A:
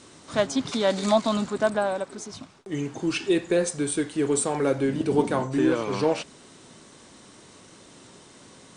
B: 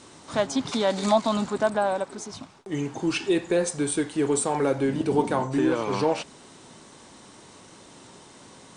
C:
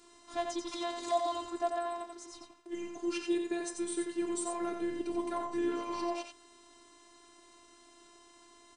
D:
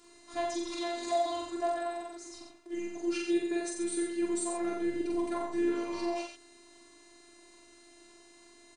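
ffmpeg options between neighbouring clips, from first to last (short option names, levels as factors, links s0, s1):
-filter_complex "[0:a]asplit=2[s0][s1];[s1]alimiter=limit=0.15:level=0:latency=1:release=155,volume=0.891[s2];[s0][s2]amix=inputs=2:normalize=0,equalizer=f=870:t=o:w=0.52:g=5,volume=0.562"
-af "afftfilt=real='hypot(re,im)*cos(PI*b)':imag='0':win_size=512:overlap=0.75,aecho=1:1:89:0.531,volume=0.422"
-filter_complex "[0:a]asplit=2[s0][s1];[s1]adelay=44,volume=0.794[s2];[s0][s2]amix=inputs=2:normalize=0"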